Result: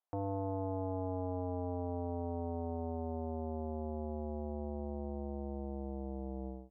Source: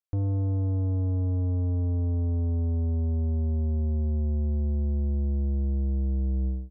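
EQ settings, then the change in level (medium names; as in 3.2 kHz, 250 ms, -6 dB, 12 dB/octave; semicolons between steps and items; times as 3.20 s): band-pass filter 830 Hz, Q 2.6; +11.0 dB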